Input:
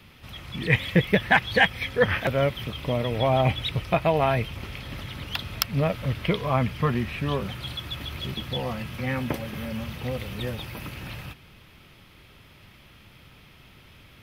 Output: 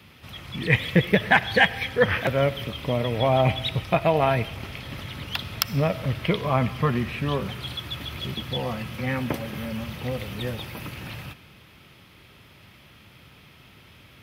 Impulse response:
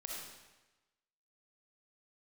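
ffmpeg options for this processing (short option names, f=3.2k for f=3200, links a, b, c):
-filter_complex "[0:a]highpass=69,asplit=2[a][b];[1:a]atrim=start_sample=2205[c];[b][c]afir=irnorm=-1:irlink=0,volume=-12dB[d];[a][d]amix=inputs=2:normalize=0"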